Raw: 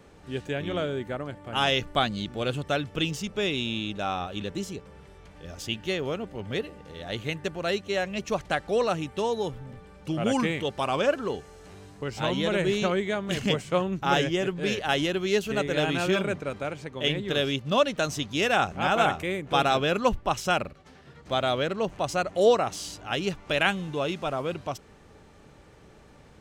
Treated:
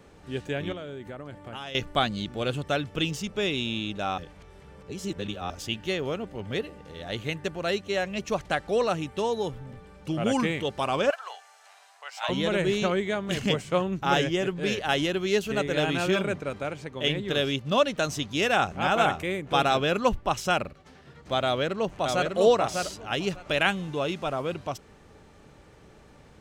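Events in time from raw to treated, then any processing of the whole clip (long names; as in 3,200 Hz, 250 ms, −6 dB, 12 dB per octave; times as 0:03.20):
0:00.72–0:01.75: downward compressor, threshold −35 dBFS
0:04.18–0:05.50: reverse
0:11.10–0:12.29: elliptic high-pass filter 680 Hz, stop band 60 dB
0:21.45–0:22.32: delay throw 600 ms, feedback 15%, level −3.5 dB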